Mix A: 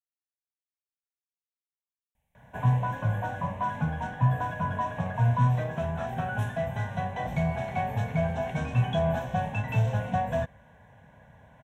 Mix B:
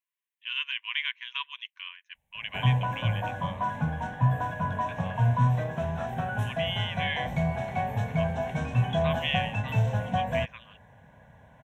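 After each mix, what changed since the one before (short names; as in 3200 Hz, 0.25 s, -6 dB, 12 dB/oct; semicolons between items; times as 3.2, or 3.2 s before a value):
speech: unmuted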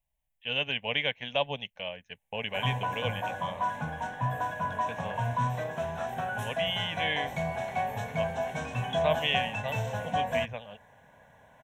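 speech: remove brick-wall FIR high-pass 950 Hz; second sound -5.0 dB; master: add tone controls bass -10 dB, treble +5 dB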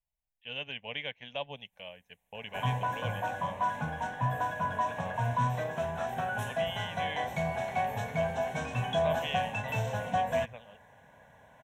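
speech -8.5 dB; second sound: entry -0.65 s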